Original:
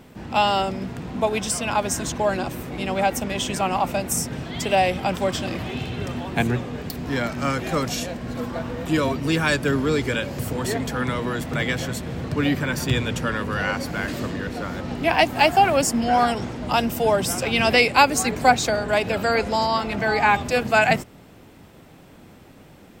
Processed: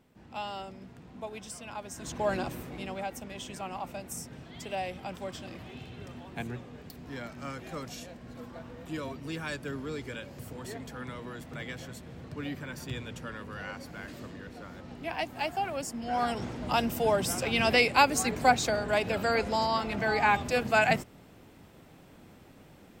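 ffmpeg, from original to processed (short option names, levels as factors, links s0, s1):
-af "volume=1.41,afade=t=in:st=1.95:d=0.39:silence=0.251189,afade=t=out:st=2.34:d=0.71:silence=0.334965,afade=t=in:st=16:d=0.48:silence=0.354813"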